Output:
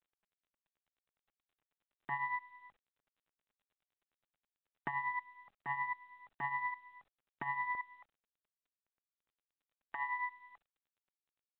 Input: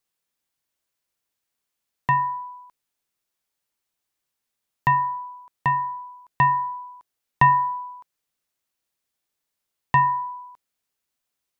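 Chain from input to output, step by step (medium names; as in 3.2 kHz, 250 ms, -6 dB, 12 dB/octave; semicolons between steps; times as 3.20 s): comb filter that takes the minimum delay 1.6 ms; peaking EQ 830 Hz +11 dB 0.26 oct; compression 5:1, threshold -33 dBFS, peak gain reduction 18 dB; wavefolder -26.5 dBFS; level held to a coarse grid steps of 20 dB; high-pass 210 Hz 12 dB/octave, from 7.75 s 680 Hz; tremolo triangle 9.5 Hz, depth 70%; low-pass 2 kHz 24 dB/octave; trim +7.5 dB; µ-law 64 kbps 8 kHz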